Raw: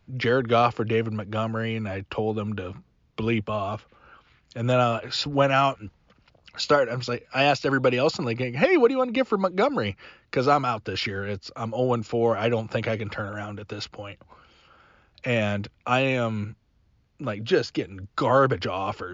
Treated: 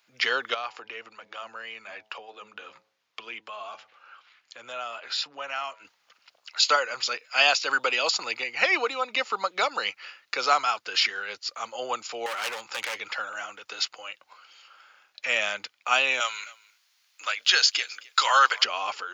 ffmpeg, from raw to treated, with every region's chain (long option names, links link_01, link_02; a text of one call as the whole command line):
ffmpeg -i in.wav -filter_complex "[0:a]asettb=1/sr,asplit=3[link_01][link_02][link_03];[link_01]atrim=end=0.544[link_04];[link_02]atrim=start=0.54:end=5.85,asetpts=PTS-STARTPTS,afade=type=in:duration=0.004:curve=qsin,afade=type=out:start_time=5.306:duration=0.004:curve=qsin,lowpass=frequency=3900:poles=1,acompressor=threshold=-36dB:ratio=2:attack=3.2:release=140:knee=1:detection=peak,bandreject=frequency=107.9:width_type=h:width=4,bandreject=frequency=215.8:width_type=h:width=4,bandreject=frequency=323.7:width_type=h:width=4,bandreject=frequency=431.6:width_type=h:width=4,bandreject=frequency=539.5:width_type=h:width=4,bandreject=frequency=647.4:width_type=h:width=4,bandreject=frequency=755.3:width_type=h:width=4,bandreject=frequency=863.2:width_type=h:width=4,bandreject=frequency=971.1:width_type=h:width=4[link_05];[link_03]atrim=start=5.846[link_06];[link_04][link_05]acrossfade=duration=0.004:curve1=hsin:curve2=qsin[link_07];[link_07][link_06]acrossfade=duration=0.004:curve1=qsin:curve2=hsin,asettb=1/sr,asplit=3[link_08][link_09][link_10];[link_08]atrim=end=12.264[link_11];[link_09]atrim=start=12.26:end=12.98,asetpts=PTS-STARTPTS,afade=type=in:duration=0.004:curve=qsin,afade=type=out:start_time=0.716:duration=0.004:curve=qsin,volume=25.5dB,asoftclip=hard,volume=-25.5dB,bandreject=frequency=670:width=7.2[link_12];[link_10]atrim=start=12.976[link_13];[link_11][link_12]acrossfade=duration=0.004:curve1=hsin:curve2=qsin[link_14];[link_14][link_13]acrossfade=duration=0.004:curve1=qsin:curve2=hsin,asettb=1/sr,asplit=3[link_15][link_16][link_17];[link_15]atrim=end=16.204[link_18];[link_16]atrim=start=16.2:end=18.64,asetpts=PTS-STARTPTS,afade=type=in:duration=0.004:curve=qsin,afade=type=out:start_time=2.436:duration=0.004:curve=qsin,highpass=430,tiltshelf=frequency=820:gain=-9,aecho=1:1:263:0.075,atrim=end_sample=107604[link_19];[link_17]atrim=start=18.636[link_20];[link_18][link_19]acrossfade=duration=0.004:curve1=hsin:curve2=qsin[link_21];[link_21][link_20]acrossfade=duration=0.004:curve1=qsin:curve2=hsin,highpass=990,deesser=0.4,highshelf=frequency=4100:gain=10.5,volume=2dB" out.wav